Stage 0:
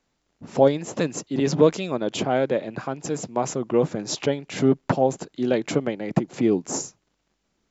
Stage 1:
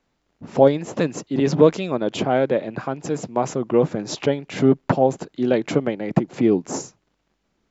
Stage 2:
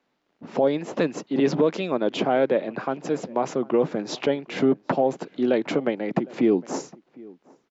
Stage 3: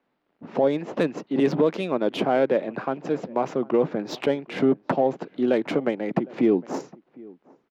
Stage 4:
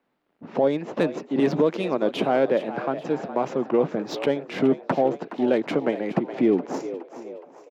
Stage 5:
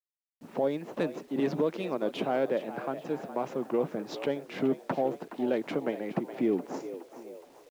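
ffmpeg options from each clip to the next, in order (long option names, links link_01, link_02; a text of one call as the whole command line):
ffmpeg -i in.wav -af "highshelf=frequency=5800:gain=-11,volume=3dB" out.wav
ffmpeg -i in.wav -filter_complex "[0:a]acrossover=split=170 5700:gain=0.1 1 0.158[link_01][link_02][link_03];[link_01][link_02][link_03]amix=inputs=3:normalize=0,alimiter=limit=-10.5dB:level=0:latency=1:release=75,asplit=2[link_04][link_05];[link_05]adelay=758,volume=-23dB,highshelf=frequency=4000:gain=-17.1[link_06];[link_04][link_06]amix=inputs=2:normalize=0" out.wav
ffmpeg -i in.wav -af "adynamicsmooth=sensitivity=3.5:basefreq=3500" out.wav
ffmpeg -i in.wav -filter_complex "[0:a]asplit=5[link_01][link_02][link_03][link_04][link_05];[link_02]adelay=418,afreqshift=75,volume=-13dB[link_06];[link_03]adelay=836,afreqshift=150,volume=-19.9dB[link_07];[link_04]adelay=1254,afreqshift=225,volume=-26.9dB[link_08];[link_05]adelay=1672,afreqshift=300,volume=-33.8dB[link_09];[link_01][link_06][link_07][link_08][link_09]amix=inputs=5:normalize=0" out.wav
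ffmpeg -i in.wav -af "acrusher=bits=8:mix=0:aa=0.000001,volume=-7.5dB" out.wav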